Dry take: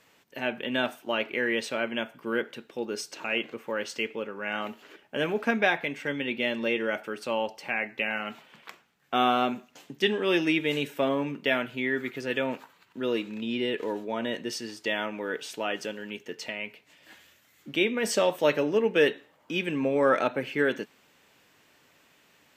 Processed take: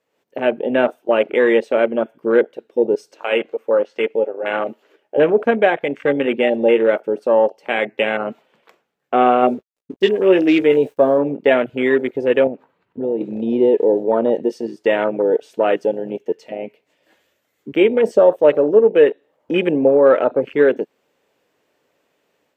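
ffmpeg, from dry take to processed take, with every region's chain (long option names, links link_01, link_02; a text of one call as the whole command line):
ffmpeg -i in.wav -filter_complex "[0:a]asettb=1/sr,asplit=3[link_01][link_02][link_03];[link_01]atrim=end=3.164[link_04];[link_02]atrim=start=3.16:end=5.18,asetpts=PTS-STARTPTS,afade=type=in:duration=0.004:curve=qsin,afade=type=out:start_time=2.016:duration=0.004:curve=qsin,lowshelf=frequency=320:gain=-8,asplit=2[link_05][link_06];[link_06]adelay=13,volume=-12.5dB[link_07];[link_05][link_07]amix=inputs=2:normalize=0,atrim=end_sample=89082,acrossover=split=3900[link_08][link_09];[link_09]acompressor=threshold=-56dB:ratio=4:attack=1:release=60[link_10];[link_08][link_10]amix=inputs=2:normalize=0[link_11];[link_03]atrim=start=5.176[link_12];[link_04][link_11]acrossfade=duration=0.004:curve1=hsin:curve2=qsin[link_13];[link_13][link_12]acrossfade=duration=0.004:curve1=qsin:curve2=hsin,asettb=1/sr,asplit=3[link_14][link_15][link_16];[link_14]atrim=end=9.414[link_17];[link_15]atrim=start=9.41:end=11.18,asetpts=PTS-STARTPTS,afade=type=in:duration=0.004:curve=qsin,afade=type=out:start_time=1.766:duration=0.004:curve=qsin,agate=range=-33dB:threshold=-46dB:ratio=3:release=100:detection=peak,acrusher=bits=6:mix=0:aa=0.5,asplit=2[link_18][link_19];[link_19]adelay=16,volume=-9dB[link_20];[link_18][link_20]amix=inputs=2:normalize=0,atrim=end_sample=78057[link_21];[link_16]atrim=start=11.176[link_22];[link_17][link_21]acrossfade=duration=0.004:curve1=hsin:curve2=qsin[link_23];[link_23][link_22]acrossfade=duration=0.004:curve1=qsin:curve2=hsin,asettb=1/sr,asplit=3[link_24][link_25][link_26];[link_24]atrim=end=12.474[link_27];[link_25]atrim=start=12.47:end=13.21,asetpts=PTS-STARTPTS,afade=type=in:duration=0.004:curve=qsin,afade=type=out:start_time=0.736:duration=0.004:curve=qsin,bass=frequency=250:gain=10,treble=frequency=4000:gain=-14,acompressor=threshold=-38dB:ratio=2.5:attack=3.2:release=140:knee=1:detection=peak[link_28];[link_26]atrim=start=13.206[link_29];[link_27][link_28]acrossfade=duration=0.004:curve1=hsin:curve2=qsin[link_30];[link_30][link_29]acrossfade=duration=0.004:curve1=qsin:curve2=hsin,afwtdn=0.0282,equalizer=frequency=490:width_type=o:width=1.5:gain=12.5,dynaudnorm=framelen=100:gausssize=3:maxgain=8dB,volume=-1dB" out.wav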